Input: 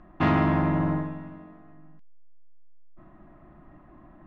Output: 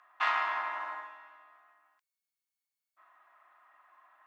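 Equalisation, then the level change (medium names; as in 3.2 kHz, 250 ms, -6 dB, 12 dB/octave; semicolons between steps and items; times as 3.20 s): ladder high-pass 850 Hz, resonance 30%; tilt EQ +2.5 dB/octave; +3.0 dB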